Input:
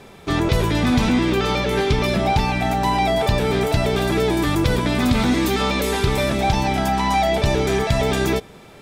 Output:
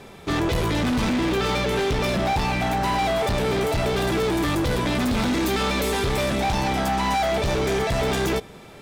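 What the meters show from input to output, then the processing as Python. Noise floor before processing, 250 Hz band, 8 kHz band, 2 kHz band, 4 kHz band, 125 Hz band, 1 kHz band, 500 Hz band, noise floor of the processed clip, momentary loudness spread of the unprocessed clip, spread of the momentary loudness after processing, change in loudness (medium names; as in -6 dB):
-44 dBFS, -4.0 dB, -1.5 dB, -2.5 dB, -2.5 dB, -5.0 dB, -3.0 dB, -3.0 dB, -44 dBFS, 2 LU, 1 LU, -3.5 dB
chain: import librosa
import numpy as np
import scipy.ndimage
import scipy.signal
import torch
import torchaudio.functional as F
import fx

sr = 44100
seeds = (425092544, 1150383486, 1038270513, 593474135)

y = np.clip(x, -10.0 ** (-20.0 / 20.0), 10.0 ** (-20.0 / 20.0))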